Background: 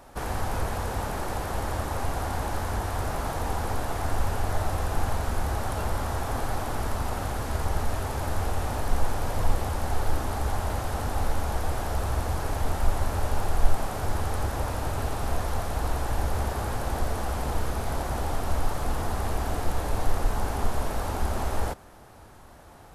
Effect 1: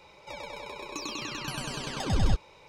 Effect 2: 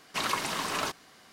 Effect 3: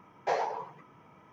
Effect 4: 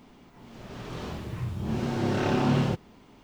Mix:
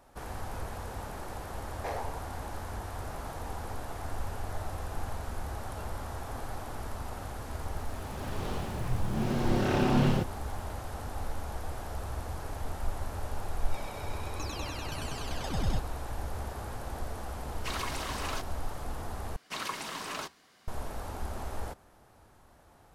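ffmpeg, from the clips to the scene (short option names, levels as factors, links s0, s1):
-filter_complex "[2:a]asplit=2[s0][s1];[0:a]volume=0.335[s2];[3:a]aeval=exprs='0.0841*(abs(mod(val(0)/0.0841+3,4)-2)-1)':c=same[s3];[s0]asoftclip=type=tanh:threshold=0.0794[s4];[s1]flanger=delay=0.8:depth=6:regen=-80:speed=1.6:shape=triangular[s5];[s2]asplit=2[s6][s7];[s6]atrim=end=19.364[s8];[s5]atrim=end=1.32,asetpts=PTS-STARTPTS,volume=0.794[s9];[s7]atrim=start=20.676[s10];[s3]atrim=end=1.32,asetpts=PTS-STARTPTS,volume=0.447,afade=t=in:d=0.004:c=hsin,afade=t=out:st=1.316:d=0.004:c=hsin,adelay=1570[s11];[4:a]atrim=end=3.23,asetpts=PTS-STARTPTS,volume=0.841,afade=t=in:d=0.004:c=hsin,afade=t=out:st=3.226:d=0.004:c=hsin,adelay=7480[s12];[1:a]atrim=end=2.68,asetpts=PTS-STARTPTS,volume=0.531,afade=t=in:d=0.004:c=hsin,afade=t=out:st=2.676:d=0.004:c=hsin,adelay=13440[s13];[s4]atrim=end=1.32,asetpts=PTS-STARTPTS,volume=0.562,afade=t=in:d=0.004:c=hsin,afade=t=out:st=1.316:d=0.004:c=hsin,adelay=17500[s14];[s8][s9]acrossfade=d=0.004:c1=hsin:c2=hsin[s15];[s15][s10]acrossfade=d=0.004:c1=hsin:c2=hsin[s16];[s16][s11][s12][s13][s14]amix=inputs=5:normalize=0"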